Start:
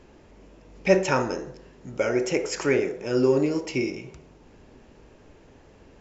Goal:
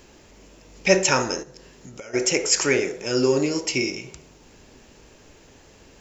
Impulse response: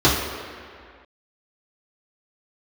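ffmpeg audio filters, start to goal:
-filter_complex "[0:a]asplit=3[s0][s1][s2];[s0]afade=t=out:st=1.42:d=0.02[s3];[s1]acompressor=threshold=0.0112:ratio=8,afade=t=in:st=1.42:d=0.02,afade=t=out:st=2.13:d=0.02[s4];[s2]afade=t=in:st=2.13:d=0.02[s5];[s3][s4][s5]amix=inputs=3:normalize=0,crystalizer=i=5:c=0"

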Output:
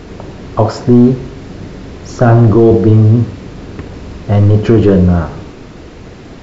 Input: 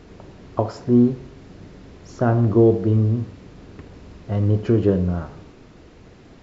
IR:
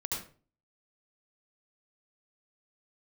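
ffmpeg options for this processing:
-af "apsyclip=6.31,volume=0.841"

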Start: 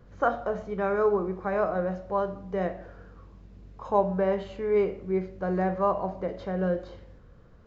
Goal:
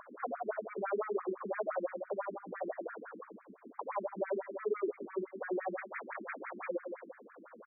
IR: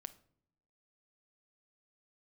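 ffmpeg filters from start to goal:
-filter_complex "[0:a]asettb=1/sr,asplit=3[s0][s1][s2];[s0]atrim=end=4.214[s3];[s1]atrim=start=4.21:end=4.88,asetpts=PTS-STARTPTS,afade=t=in:d=0.004:c=qsin,afade=t=out:st=0.666:d=0.004:c=qsin,aecho=1:1:3:0.85,atrim=end_sample=29547[s4];[s2]atrim=start=4.876[s5];[s3][s4]acrossfade=d=0.004:c1=hsin:c2=qsin[s6];[s6][s5]acrossfade=d=0.004:c1=qsin:c2=hsin,acompressor=threshold=0.0141:ratio=2.5,equalizer=f=230:t=o:w=2.4:g=3.5,acompressor=mode=upward:threshold=0.00501:ratio=2.5,asplit=2[s7][s8];[s8]highpass=f=720:p=1,volume=11.2,asoftclip=type=tanh:threshold=0.075[s9];[s7][s9]amix=inputs=2:normalize=0,lowpass=f=1700:p=1,volume=0.501,asettb=1/sr,asplit=3[s10][s11][s12];[s10]atrim=end=0.424[s13];[s11]atrim=start=0.42:end=0.84,asetpts=PTS-STARTPTS,afade=t=in:d=0.004:c=qsin,afade=t=out:st=0.416:d=0.004:c=qsin,highshelf=f=3000:g=12[s14];[s12]atrim=start=0.836[s15];[s13][s14]acrossfade=d=0.004:c1=hsin:c2=qsin[s16];[s16][s15]acrossfade=d=0.004:c1=qsin:c2=hsin,asplit=3[s17][s18][s19];[s17]afade=t=out:st=5.77:d=0.02[s20];[s18]aeval=exprs='(mod(35.5*val(0)+1,2)-1)/35.5':c=same,afade=t=in:st=5.77:d=0.02,afade=t=out:st=6.68:d=0.02[s21];[s19]afade=t=in:st=6.68:d=0.02[s22];[s20][s21][s22]amix=inputs=3:normalize=0,asplit=2[s23][s24];[s24]adelay=128.3,volume=0.141,highshelf=f=4000:g=-2.89[s25];[s23][s25]amix=inputs=2:normalize=0,afftfilt=real='re*between(b*sr/1024,260*pow(1800/260,0.5+0.5*sin(2*PI*5.9*pts/sr))/1.41,260*pow(1800/260,0.5+0.5*sin(2*PI*5.9*pts/sr))*1.41)':imag='im*between(b*sr/1024,260*pow(1800/260,0.5+0.5*sin(2*PI*5.9*pts/sr))/1.41,260*pow(1800/260,0.5+0.5*sin(2*PI*5.9*pts/sr))*1.41)':win_size=1024:overlap=0.75"

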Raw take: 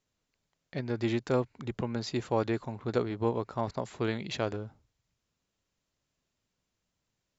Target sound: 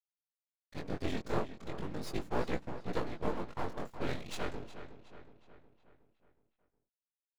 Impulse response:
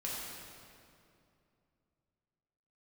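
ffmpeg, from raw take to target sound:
-filter_complex "[0:a]highshelf=f=6900:g=4.5,aeval=exprs='sgn(val(0))*max(abs(val(0))-0.00596,0)':c=same,afftfilt=real='hypot(re,im)*cos(2*PI*random(0))':imag='hypot(re,im)*sin(2*PI*random(1))':win_size=512:overlap=0.75,aeval=exprs='max(val(0),0)':c=same,flanger=delay=16:depth=7.2:speed=0.38,asplit=2[s0][s1];[s1]adelay=366,lowpass=f=4600:p=1,volume=0.251,asplit=2[s2][s3];[s3]adelay=366,lowpass=f=4600:p=1,volume=0.53,asplit=2[s4][s5];[s5]adelay=366,lowpass=f=4600:p=1,volume=0.53,asplit=2[s6][s7];[s7]adelay=366,lowpass=f=4600:p=1,volume=0.53,asplit=2[s8][s9];[s9]adelay=366,lowpass=f=4600:p=1,volume=0.53,asplit=2[s10][s11];[s11]adelay=366,lowpass=f=4600:p=1,volume=0.53[s12];[s0][s2][s4][s6][s8][s10][s12]amix=inputs=7:normalize=0,volume=2.51"

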